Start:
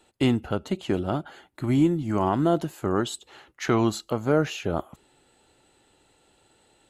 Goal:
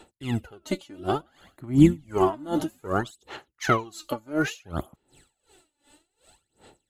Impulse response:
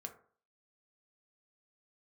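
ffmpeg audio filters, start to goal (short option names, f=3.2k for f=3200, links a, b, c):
-filter_complex "[0:a]highshelf=f=5.4k:g=7.5,aphaser=in_gain=1:out_gain=1:delay=3.5:decay=0.71:speed=0.6:type=sinusoidal,asettb=1/sr,asplit=3[a][b][c];[a]atrim=end=1.044[d];[b]atrim=start=1.04:end=3.11,asetpts=PTS-STARTPTS,afade=t=in:d=0.004:c=qsin,afade=t=out:st=2.066:d=0.004:c=qsin,asplit=4[e][f][g][h];[f]adelay=105,afreqshift=-65,volume=-17dB[i];[g]adelay=210,afreqshift=-130,volume=-26.1dB[j];[h]adelay=315,afreqshift=-195,volume=-35.2dB[k];[e][i][j][k]amix=inputs=4:normalize=0,atrim=end_sample=91287[l];[c]atrim=start=3.106[m];[d][l]acrossfade=d=0.004:c1=hsin:c2=qsin[n];[n][m]acrossfade=d=0.004:c1=qsin:c2=hsin,aeval=exprs='val(0)*pow(10,-25*(0.5-0.5*cos(2*PI*2.7*n/s))/20)':c=same,volume=1.5dB"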